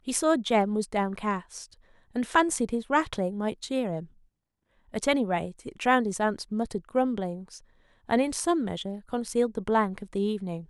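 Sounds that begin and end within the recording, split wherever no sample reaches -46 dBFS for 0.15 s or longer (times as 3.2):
2.15–4.06
4.94–7.59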